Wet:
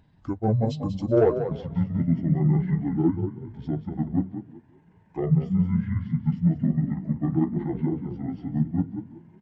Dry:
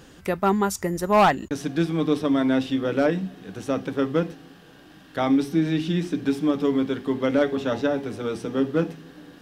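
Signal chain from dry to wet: delay-line pitch shifter -10 st; in parallel at 0 dB: compressor, threshold -33 dBFS, peak gain reduction 17 dB; on the sum: frequency-shifting echo 0.189 s, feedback 37%, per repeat +31 Hz, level -7 dB; one-sided clip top -12.5 dBFS; on a send: echo 0.312 s -23.5 dB; on the sum: spectral expander 1.5:1

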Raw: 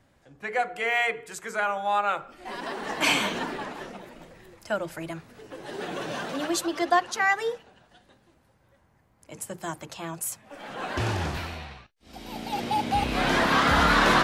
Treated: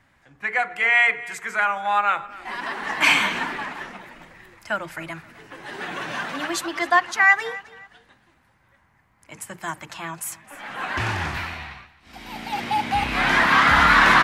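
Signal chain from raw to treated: ten-band EQ 500 Hz -6 dB, 1000 Hz +5 dB, 2000 Hz +9 dB; feedback echo 0.264 s, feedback 29%, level -19.5 dB

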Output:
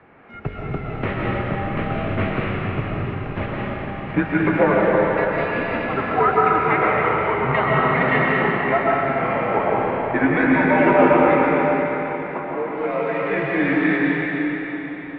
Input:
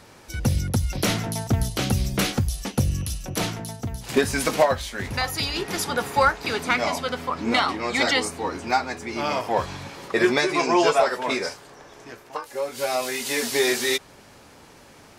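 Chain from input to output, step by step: mistuned SSB -97 Hz 190–2500 Hz; digital reverb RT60 4.3 s, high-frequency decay 0.9×, pre-delay 85 ms, DRR -5 dB

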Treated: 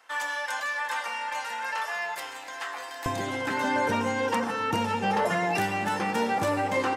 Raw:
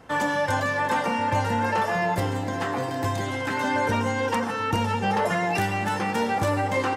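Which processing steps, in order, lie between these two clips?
rattling part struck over -29 dBFS, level -36 dBFS; HPF 1200 Hz 12 dB/oct, from 3.06 s 150 Hz; gain -1.5 dB

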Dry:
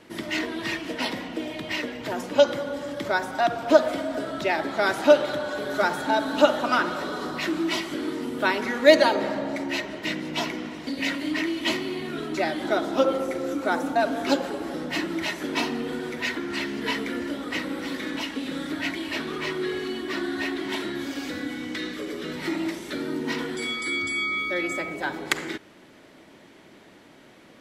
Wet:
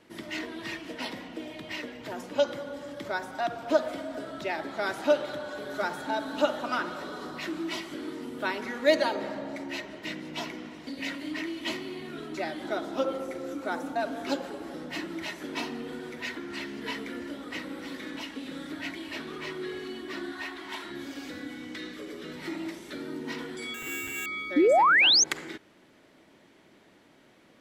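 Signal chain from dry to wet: 20.32–20.91 graphic EQ 125/250/500/1000 Hz -9/-5/-6/+6 dB; 23.74–24.26 sample-rate reducer 5000 Hz, jitter 0%; 24.56–25.24 painted sound rise 270–6700 Hz -12 dBFS; gain -7.5 dB

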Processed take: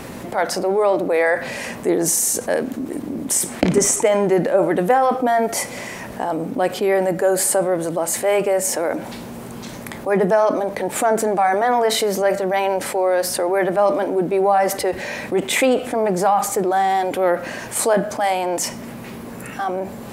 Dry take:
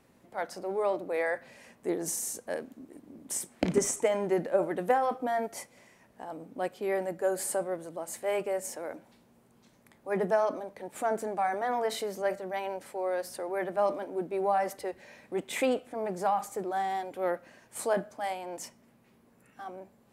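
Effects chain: fast leveller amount 50%; gain +8.5 dB

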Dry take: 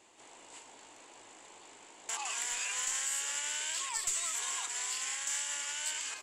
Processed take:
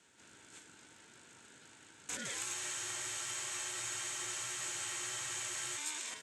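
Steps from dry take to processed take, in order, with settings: Chebyshev band-stop 330–710 Hz, order 4; ring modulator 610 Hz; spectral freeze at 2.55, 3.23 s

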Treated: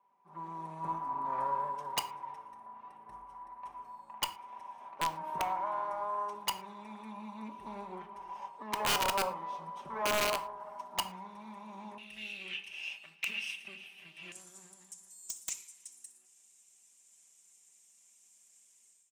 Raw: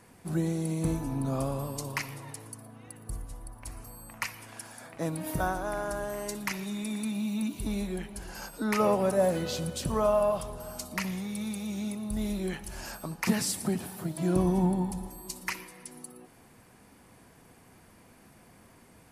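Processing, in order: minimum comb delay 0.33 ms; comb 5.1 ms, depth 61%; AGC gain up to 15.5 dB; band-pass 970 Hz, Q 12, from 11.98 s 2700 Hz, from 14.32 s 7300 Hz; wrapped overs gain 24 dB; reverb, pre-delay 7 ms, DRR 11 dB

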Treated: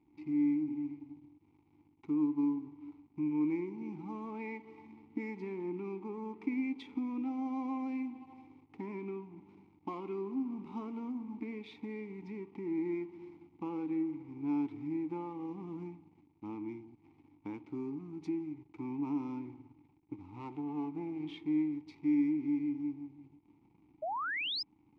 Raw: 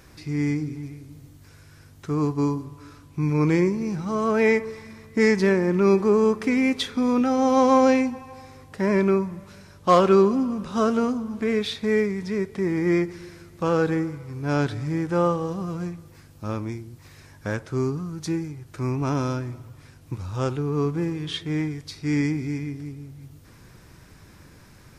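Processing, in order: 19.45–21.26 minimum comb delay 0.73 ms; compressor 3:1, threshold -29 dBFS, peak gain reduction 13 dB; spring tank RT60 1.3 s, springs 51/59 ms, chirp 35 ms, DRR 15.5 dB; backlash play -40 dBFS; vowel filter u; 24.02–24.63 painted sound rise 590–5300 Hz -39 dBFS; gain +3 dB

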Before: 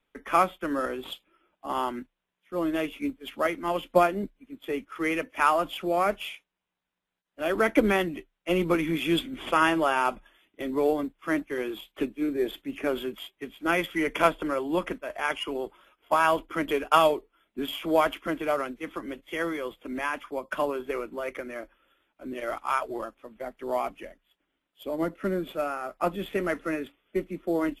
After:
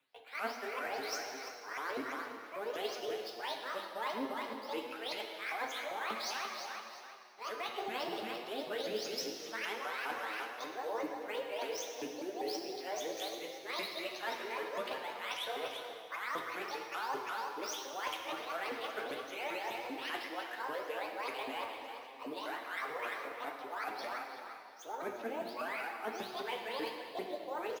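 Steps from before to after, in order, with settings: repeated pitch sweeps +12 st, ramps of 0.197 s; low shelf 320 Hz -10.5 dB; feedback echo 0.347 s, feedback 34%, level -15 dB; reverse; compressor 12:1, threshold -41 dBFS, peak gain reduction 26 dB; reverse; HPF 97 Hz 24 dB/oct; on a send at -2 dB: reverb RT60 2.1 s, pre-delay 4 ms; on the sum: flange 1.4 Hz, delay 7.4 ms, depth 2 ms, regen +41%; bell 11000 Hz +3.5 dB 0.69 oct; gain +7 dB

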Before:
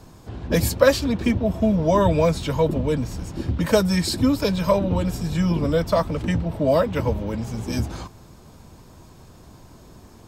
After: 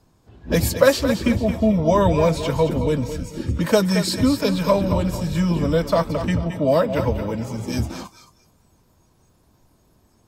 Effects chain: thinning echo 0.221 s, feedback 37%, high-pass 220 Hz, level -9 dB; spectral noise reduction 14 dB; gain +1 dB

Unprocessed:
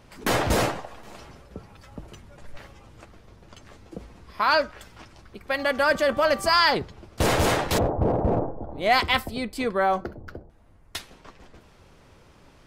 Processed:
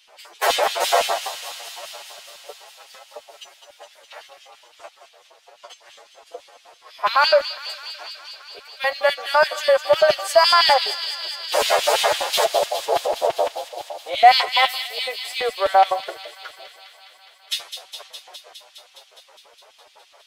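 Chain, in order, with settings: steep high-pass 370 Hz 36 dB/oct; in parallel at -9.5 dB: soft clip -25 dBFS, distortion -7 dB; on the sum: LFO high-pass square 9.5 Hz 650–3200 Hz; time stretch by phase-locked vocoder 1.6×; thin delay 0.206 s, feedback 78%, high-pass 2800 Hz, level -7.5 dB; gain +2 dB

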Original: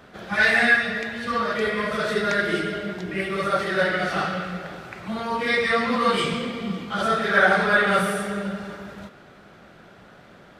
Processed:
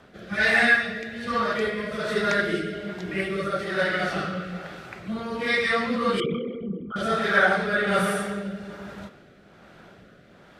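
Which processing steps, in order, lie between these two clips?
6.2–6.96 formant sharpening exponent 3; rotary speaker horn 1.2 Hz

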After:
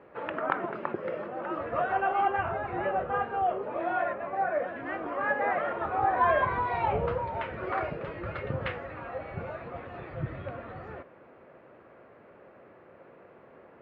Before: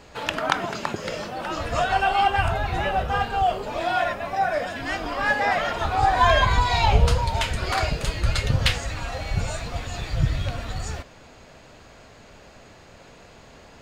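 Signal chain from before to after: speaker cabinet 140–2100 Hz, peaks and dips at 360 Hz +8 dB, 530 Hz +7 dB, 1200 Hz +4 dB; gain -7.5 dB

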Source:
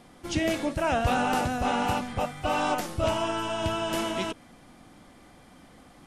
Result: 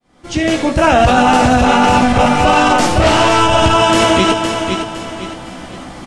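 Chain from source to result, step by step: opening faded in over 1.38 s; feedback echo 0.51 s, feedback 37%, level -9.5 dB; 3–3.41 overloaded stage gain 29 dB; LPF 8900 Hz 24 dB/oct; early reflections 16 ms -6.5 dB, 74 ms -12 dB; maximiser +21 dB; gain -1 dB

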